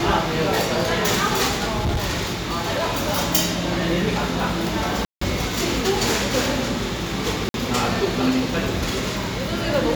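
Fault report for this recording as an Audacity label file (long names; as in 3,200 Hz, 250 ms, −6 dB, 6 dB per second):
1.640000	3.060000	clipping −18 dBFS
5.050000	5.210000	drop-out 164 ms
7.490000	7.540000	drop-out 52 ms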